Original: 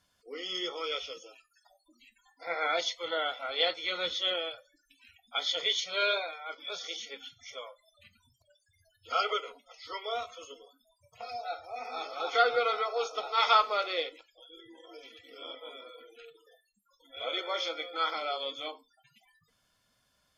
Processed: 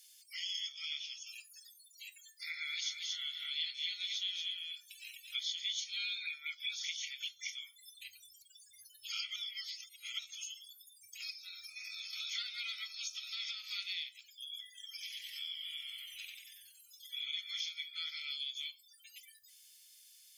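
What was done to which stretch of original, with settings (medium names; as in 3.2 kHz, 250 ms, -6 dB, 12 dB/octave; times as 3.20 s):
0.72–1.27 s: distance through air 71 m
2.44–5.55 s: delay 230 ms -5 dB
6.20–7.54 s: sweeping bell 5.2 Hz 750–2600 Hz +15 dB
9.36–10.19 s: reverse
11.30–12.13 s: compression, threshold -42 dBFS
12.86–13.69 s: compression, threshold -31 dBFS
14.91–17.19 s: frequency-shifting echo 93 ms, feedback 50%, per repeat -140 Hz, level -4 dB
17.88–18.30 s: treble shelf 5.4 kHz -6.5 dB
whole clip: elliptic band-stop 100–2200 Hz, stop band 50 dB; differentiator; compression 3:1, threshold -60 dBFS; trim +17.5 dB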